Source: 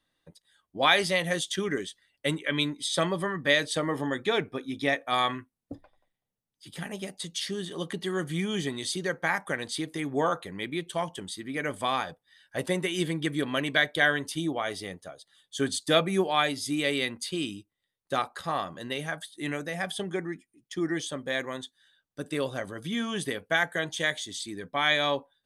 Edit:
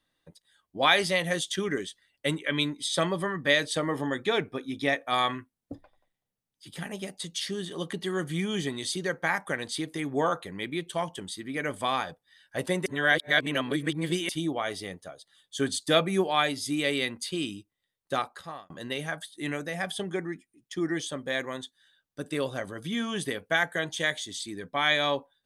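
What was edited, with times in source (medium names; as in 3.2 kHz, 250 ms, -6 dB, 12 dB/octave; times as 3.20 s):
12.86–14.29 s: reverse
18.13–18.70 s: fade out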